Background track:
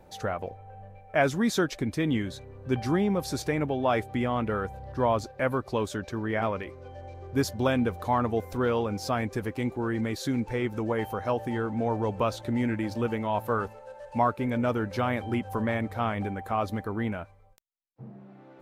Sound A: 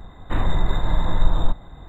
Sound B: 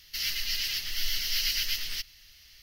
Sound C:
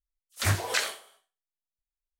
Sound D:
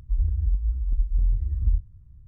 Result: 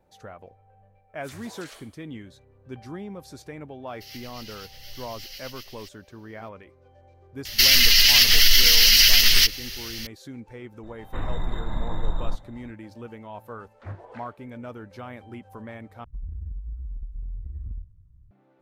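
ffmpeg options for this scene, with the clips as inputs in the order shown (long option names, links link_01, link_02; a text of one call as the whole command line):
ffmpeg -i bed.wav -i cue0.wav -i cue1.wav -i cue2.wav -i cue3.wav -filter_complex "[3:a]asplit=2[link_01][link_02];[2:a]asplit=2[link_03][link_04];[0:a]volume=-11.5dB[link_05];[link_01]acompressor=threshold=-32dB:ratio=4:attack=0.58:release=42:knee=1:detection=peak[link_06];[link_04]alimiter=level_in=22.5dB:limit=-1dB:release=50:level=0:latency=1[link_07];[link_02]lowpass=1000[link_08];[4:a]acompressor=threshold=-25dB:ratio=6:attack=3.2:release=140:knee=1:detection=peak[link_09];[link_05]asplit=2[link_10][link_11];[link_10]atrim=end=16.044[link_12];[link_09]atrim=end=2.27,asetpts=PTS-STARTPTS,volume=-5.5dB[link_13];[link_11]atrim=start=18.306[link_14];[link_06]atrim=end=2.19,asetpts=PTS-STARTPTS,volume=-10dB,afade=type=in:duration=0.004:curve=hsin,afade=type=out:start_time=2.186:duration=0.004:curve=hsin,adelay=870[link_15];[link_03]atrim=end=2.62,asetpts=PTS-STARTPTS,volume=-13dB,afade=type=in:duration=0.004:curve=hsin,afade=type=out:start_time=2.616:duration=0.004:curve=hsin,adelay=3870[link_16];[link_07]atrim=end=2.62,asetpts=PTS-STARTPTS,volume=-3.5dB,afade=type=in:duration=0.004:curve=hsin,afade=type=out:start_time=2.616:duration=0.004:curve=hsin,adelay=7450[link_17];[1:a]atrim=end=1.88,asetpts=PTS-STARTPTS,volume=-8dB,afade=type=in:duration=0.004:curve=hsin,afade=type=out:start_time=1.876:duration=0.004:curve=hsin,adelay=10830[link_18];[link_08]atrim=end=2.19,asetpts=PTS-STARTPTS,volume=-10.5dB,afade=type=in:duration=0.004:curve=hsin,afade=type=out:start_time=2.186:duration=0.004:curve=hsin,adelay=13400[link_19];[link_12][link_13]acrossfade=duration=0.004:curve1=hsin:curve2=hsin[link_20];[link_20][link_14]acrossfade=duration=0.004:curve1=hsin:curve2=hsin[link_21];[link_21][link_15][link_16][link_17][link_18][link_19]amix=inputs=6:normalize=0" out.wav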